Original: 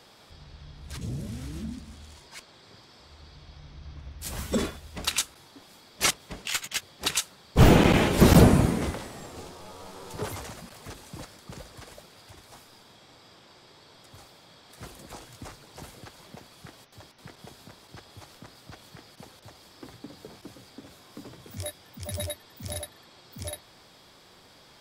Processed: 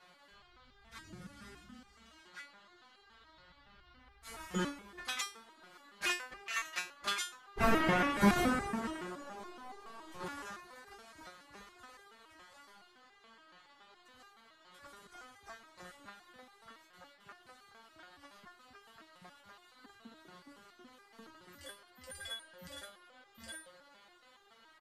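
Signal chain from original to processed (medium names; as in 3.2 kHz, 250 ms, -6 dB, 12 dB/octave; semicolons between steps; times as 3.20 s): peaking EQ 1.6 kHz +13 dB 1.5 oct; pitch shift -2 st; on a send: feedback echo behind a band-pass 134 ms, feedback 82%, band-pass 580 Hz, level -16 dB; on the sum: resonator arpeggio 7.1 Hz 180–400 Hz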